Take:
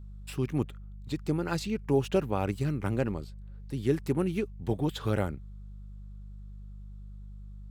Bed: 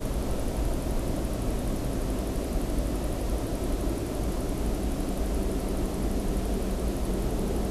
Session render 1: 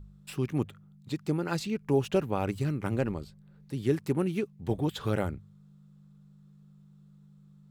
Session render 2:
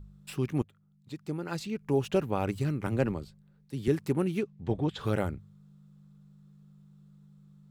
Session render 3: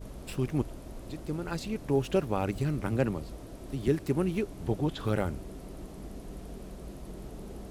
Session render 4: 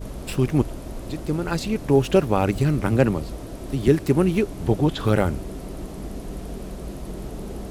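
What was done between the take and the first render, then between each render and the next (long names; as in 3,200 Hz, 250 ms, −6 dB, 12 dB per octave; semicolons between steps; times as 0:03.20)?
hum removal 50 Hz, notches 2
0:00.62–0:02.26: fade in, from −15.5 dB; 0:02.87–0:03.88: multiband upward and downward expander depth 40%; 0:04.43–0:04.99: high-frequency loss of the air 95 metres
mix in bed −14.5 dB
level +9.5 dB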